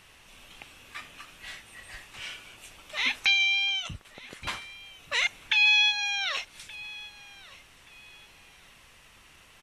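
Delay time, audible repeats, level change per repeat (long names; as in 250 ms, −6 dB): 1,175 ms, 2, −11.5 dB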